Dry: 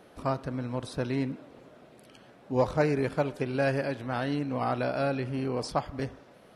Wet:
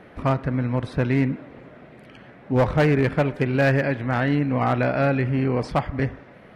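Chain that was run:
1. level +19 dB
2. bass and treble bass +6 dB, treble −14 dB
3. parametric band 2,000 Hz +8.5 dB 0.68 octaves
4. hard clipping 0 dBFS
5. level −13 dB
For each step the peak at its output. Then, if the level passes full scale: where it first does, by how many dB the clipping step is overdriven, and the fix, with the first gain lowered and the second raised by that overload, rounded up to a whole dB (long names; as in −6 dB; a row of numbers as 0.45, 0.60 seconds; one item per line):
+6.0, +6.5, +7.0, 0.0, −13.0 dBFS
step 1, 7.0 dB
step 1 +12 dB, step 5 −6 dB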